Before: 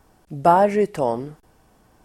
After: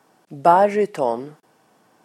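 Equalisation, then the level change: HPF 130 Hz 24 dB/oct; low shelf 200 Hz -9.5 dB; high shelf 9700 Hz -6.5 dB; +2.0 dB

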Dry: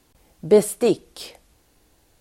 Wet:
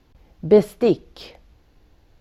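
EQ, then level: running mean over 5 samples; low shelf 150 Hz +9 dB; 0.0 dB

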